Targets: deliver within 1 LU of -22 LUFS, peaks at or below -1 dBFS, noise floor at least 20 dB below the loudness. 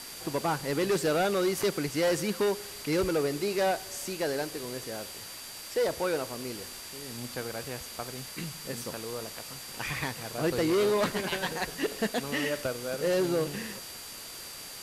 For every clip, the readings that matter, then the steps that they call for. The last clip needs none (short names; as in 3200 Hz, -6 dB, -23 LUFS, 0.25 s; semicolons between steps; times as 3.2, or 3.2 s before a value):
steady tone 4700 Hz; tone level -47 dBFS; noise floor -43 dBFS; noise floor target -51 dBFS; loudness -31.0 LUFS; peak -19.5 dBFS; loudness target -22.0 LUFS
-> notch 4700 Hz, Q 30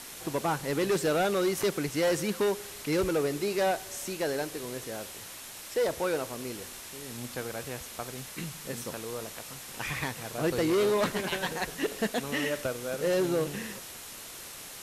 steady tone none; noise floor -44 dBFS; noise floor target -51 dBFS
-> denoiser 7 dB, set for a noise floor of -44 dBFS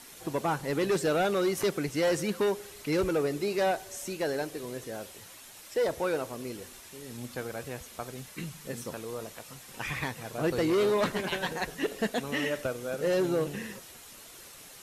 noise floor -50 dBFS; noise floor target -51 dBFS
-> denoiser 6 dB, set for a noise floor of -50 dBFS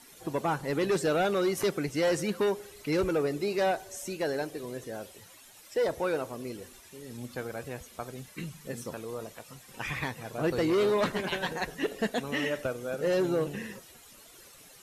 noise floor -54 dBFS; loudness -31.0 LUFS; peak -20.0 dBFS; loudness target -22.0 LUFS
-> gain +9 dB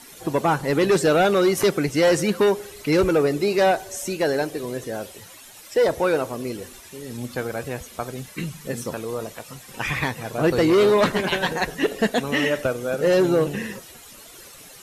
loudness -22.0 LUFS; peak -11.0 dBFS; noise floor -45 dBFS